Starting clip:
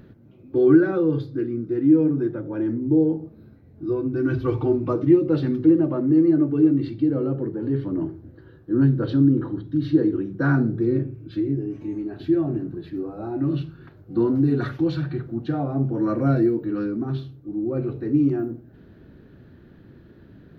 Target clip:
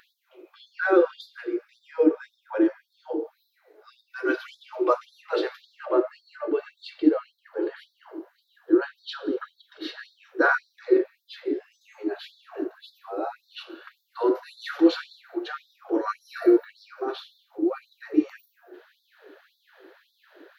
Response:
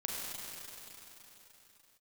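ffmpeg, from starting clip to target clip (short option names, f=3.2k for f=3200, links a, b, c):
-filter_complex "[0:a]bandreject=f=90.56:t=h:w=4,bandreject=f=181.12:t=h:w=4,bandreject=f=271.68:t=h:w=4,bandreject=f=362.24:t=h:w=4,bandreject=f=452.8:t=h:w=4,bandreject=f=543.36:t=h:w=4,bandreject=f=633.92:t=h:w=4,bandreject=f=724.48:t=h:w=4,bandreject=f=815.04:t=h:w=4,bandreject=f=905.6:t=h:w=4,bandreject=f=996.16:t=h:w=4,bandreject=f=1.08672k:t=h:w=4,bandreject=f=1.17728k:t=h:w=4,bandreject=f=1.26784k:t=h:w=4,bandreject=f=1.3584k:t=h:w=4,bandreject=f=1.44896k:t=h:w=4,bandreject=f=1.53952k:t=h:w=4,bandreject=f=1.63008k:t=h:w=4,bandreject=f=1.72064k:t=h:w=4,bandreject=f=1.8112k:t=h:w=4,bandreject=f=1.90176k:t=h:w=4,bandreject=f=1.99232k:t=h:w=4,bandreject=f=2.08288k:t=h:w=4,bandreject=f=2.17344k:t=h:w=4,bandreject=f=2.264k:t=h:w=4,bandreject=f=2.35456k:t=h:w=4,bandreject=f=2.44512k:t=h:w=4,bandreject=f=2.53568k:t=h:w=4,bandreject=f=2.62624k:t=h:w=4,bandreject=f=2.7168k:t=h:w=4,bandreject=f=2.80736k:t=h:w=4,bandreject=f=2.89792k:t=h:w=4,bandreject=f=2.98848k:t=h:w=4,bandreject=f=3.07904k:t=h:w=4,asplit=2[a][b];[1:a]atrim=start_sample=2205,afade=t=out:st=0.3:d=0.01,atrim=end_sample=13671[c];[b][c]afir=irnorm=-1:irlink=0,volume=-14dB[d];[a][d]amix=inputs=2:normalize=0,afftfilt=real='re*gte(b*sr/1024,300*pow(3500/300,0.5+0.5*sin(2*PI*1.8*pts/sr)))':imag='im*gte(b*sr/1024,300*pow(3500/300,0.5+0.5*sin(2*PI*1.8*pts/sr)))':win_size=1024:overlap=0.75,volume=6.5dB"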